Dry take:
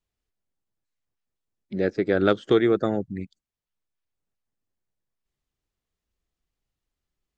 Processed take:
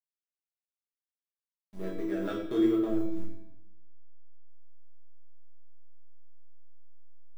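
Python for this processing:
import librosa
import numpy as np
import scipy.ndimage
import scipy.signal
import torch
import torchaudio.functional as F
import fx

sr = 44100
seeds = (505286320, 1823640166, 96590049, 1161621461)

y = fx.delta_hold(x, sr, step_db=-38.5)
y = fx.backlash(y, sr, play_db=-25.5)
y = fx.comb_fb(y, sr, f0_hz=330.0, decay_s=0.65, harmonics='all', damping=0.0, mix_pct=90)
y = fx.room_shoebox(y, sr, seeds[0], volume_m3=200.0, walls='mixed', distance_m=1.3)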